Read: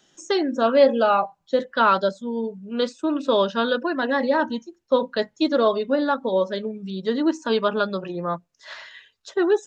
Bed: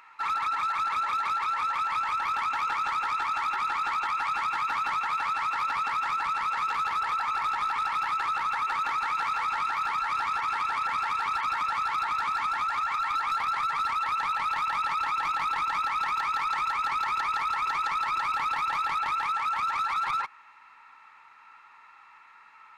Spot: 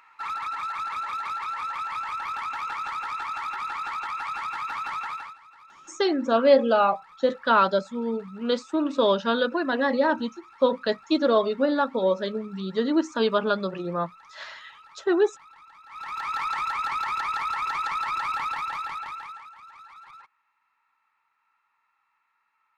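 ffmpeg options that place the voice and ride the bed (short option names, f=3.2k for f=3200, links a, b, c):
-filter_complex "[0:a]adelay=5700,volume=-1.5dB[a];[1:a]volume=20dB,afade=t=out:st=5.06:d=0.31:silence=0.1,afade=t=in:st=15.86:d=0.53:silence=0.0707946,afade=t=out:st=18.34:d=1.17:silence=0.105925[b];[a][b]amix=inputs=2:normalize=0"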